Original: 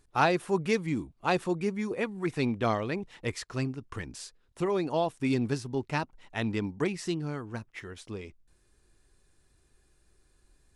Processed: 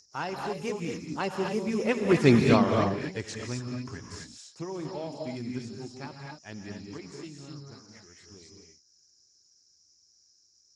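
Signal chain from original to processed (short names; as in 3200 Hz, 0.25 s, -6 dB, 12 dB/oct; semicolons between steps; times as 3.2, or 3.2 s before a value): Doppler pass-by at 2.23, 21 m/s, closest 3.8 m; high shelf 7800 Hz +7.5 dB; in parallel at +2 dB: compressor 5:1, threshold -51 dBFS, peak gain reduction 23.5 dB; on the sum: whine 5300 Hz -56 dBFS; added harmonics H 2 -41 dB, 4 -39 dB, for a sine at -15.5 dBFS; reverb, pre-delay 38 ms, DRR 1 dB; gain +8 dB; Speex 15 kbps 32000 Hz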